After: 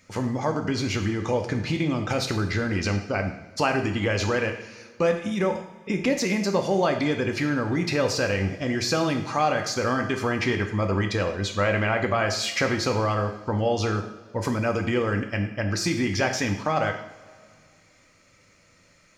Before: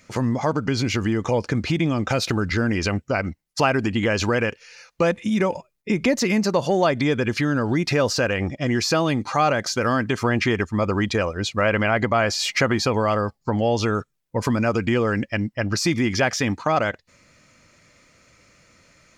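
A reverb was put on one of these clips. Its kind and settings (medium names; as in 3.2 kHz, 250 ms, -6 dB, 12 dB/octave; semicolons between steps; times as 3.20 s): two-slope reverb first 0.65 s, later 2.3 s, from -17 dB, DRR 4 dB; trim -4.5 dB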